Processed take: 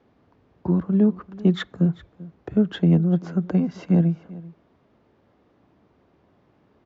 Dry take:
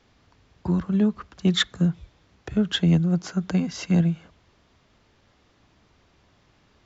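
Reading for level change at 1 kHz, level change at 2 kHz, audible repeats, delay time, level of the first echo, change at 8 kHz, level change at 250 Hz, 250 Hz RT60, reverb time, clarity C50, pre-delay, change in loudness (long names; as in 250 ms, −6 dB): −0.5 dB, −5.5 dB, 1, 390 ms, −20.0 dB, can't be measured, +2.5 dB, no reverb audible, no reverb audible, no reverb audible, no reverb audible, +1.5 dB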